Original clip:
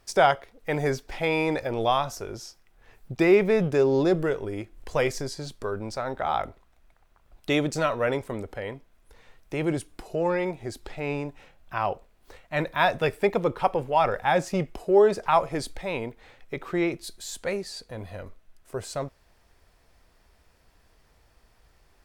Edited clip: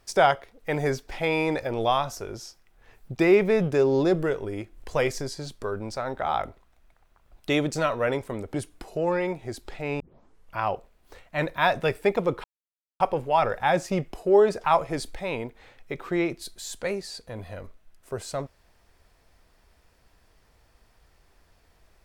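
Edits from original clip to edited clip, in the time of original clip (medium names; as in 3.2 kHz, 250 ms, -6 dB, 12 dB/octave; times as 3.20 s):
8.54–9.72 s: delete
11.18 s: tape start 0.60 s
13.62 s: insert silence 0.56 s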